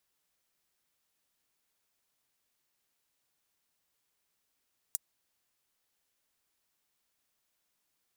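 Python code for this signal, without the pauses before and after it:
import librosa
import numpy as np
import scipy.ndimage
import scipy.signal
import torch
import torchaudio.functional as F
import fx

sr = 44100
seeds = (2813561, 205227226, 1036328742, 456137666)

y = fx.drum_hat(sr, length_s=0.24, from_hz=7600.0, decay_s=0.03)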